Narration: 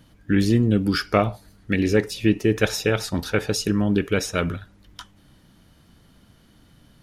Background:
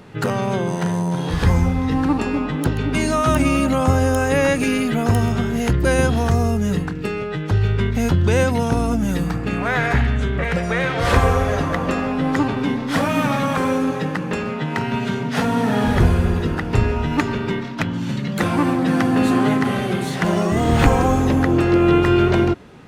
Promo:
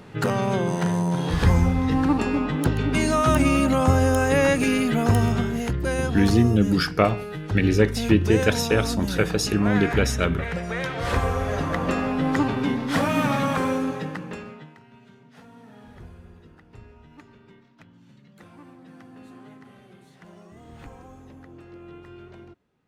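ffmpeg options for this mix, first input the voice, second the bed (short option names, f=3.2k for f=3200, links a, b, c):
-filter_complex "[0:a]adelay=5850,volume=0dB[a];[1:a]volume=3dB,afade=t=out:st=5.32:d=0.39:silence=0.501187,afade=t=in:st=11.34:d=0.54:silence=0.562341,afade=t=out:st=13.48:d=1.29:silence=0.0501187[b];[a][b]amix=inputs=2:normalize=0"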